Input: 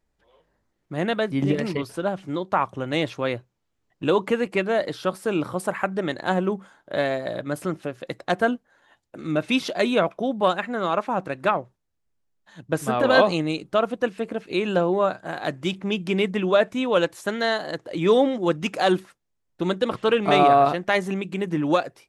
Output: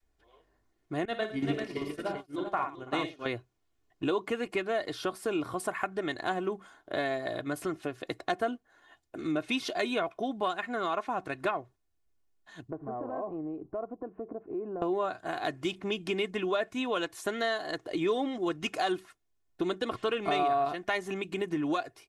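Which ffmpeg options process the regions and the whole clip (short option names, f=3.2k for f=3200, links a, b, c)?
-filter_complex "[0:a]asettb=1/sr,asplit=3[a][b][c];[a]atrim=end=1.054[d];[b]atrim=start=1.05:end=3.26,asetpts=PTS-STARTPTS,afade=t=in:d=0.004:c=qsin,afade=t=out:st=2.206:d=0.004:c=qsin,aecho=1:1:56|107|329|391:0.501|0.398|0.141|0.596,atrim=end_sample=97461,agate=range=-33dB:threshold=-18dB:ratio=3:release=100:detection=peak[e];[c]atrim=start=3.256[f];[d][e]acrossfade=d=0.004:c1=hsin:c2=qsin[g];[g][f]acrossfade=d=0.004:c1=qsin:c2=hsin,asettb=1/sr,asplit=3[h][i][j];[h]atrim=end=12.704[k];[i]atrim=start=12.7:end=14.82,asetpts=PTS-STARTPTS,afade=t=in:d=0.004:c=qsin,afade=t=out:st=2.116:d=0.004:c=qsin,lowpass=f=1k:w=0.5412,lowpass=f=1k:w=1.3066,acompressor=threshold=-36dB:ratio=2.5:attack=3.2:release=140:knee=1:detection=peak[l];[j]atrim=start=14.816[m];[k][l]acrossfade=d=0.004:c1=hsin:c2=qsin[n];[n][m]acrossfade=d=0.004:c1=qsin:c2=hsin,adynamicequalizer=threshold=0.0224:dfrequency=360:dqfactor=0.72:tfrequency=360:tqfactor=0.72:attack=5:release=100:ratio=0.375:range=2:mode=cutabove:tftype=bell,aecho=1:1:2.8:0.56,acompressor=threshold=-27dB:ratio=2.5,volume=-2.5dB"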